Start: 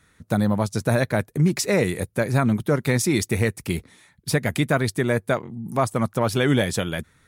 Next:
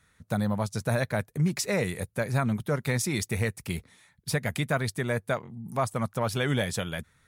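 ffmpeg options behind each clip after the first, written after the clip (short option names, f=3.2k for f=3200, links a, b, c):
-af "equalizer=f=320:t=o:w=0.79:g=-7,volume=-5dB"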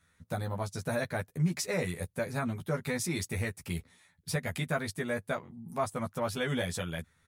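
-filter_complex "[0:a]asplit=2[a][b];[b]adelay=12,volume=-2dB[c];[a][c]amix=inputs=2:normalize=0,volume=-6.5dB"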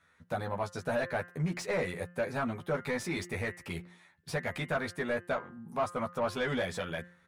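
-filter_complex "[0:a]bandreject=f=176:t=h:w=4,bandreject=f=352:t=h:w=4,bandreject=f=528:t=h:w=4,bandreject=f=704:t=h:w=4,bandreject=f=880:t=h:w=4,bandreject=f=1.056k:t=h:w=4,bandreject=f=1.232k:t=h:w=4,bandreject=f=1.408k:t=h:w=4,bandreject=f=1.584k:t=h:w=4,bandreject=f=1.76k:t=h:w=4,bandreject=f=1.936k:t=h:w=4,bandreject=f=2.112k:t=h:w=4,bandreject=f=2.288k:t=h:w=4,bandreject=f=2.464k:t=h:w=4,bandreject=f=2.64k:t=h:w=4,bandreject=f=2.816k:t=h:w=4,bandreject=f=2.992k:t=h:w=4,asplit=2[a][b];[b]highpass=f=720:p=1,volume=17dB,asoftclip=type=tanh:threshold=-17dB[c];[a][c]amix=inputs=2:normalize=0,lowpass=f=1.3k:p=1,volume=-6dB,volume=-2.5dB"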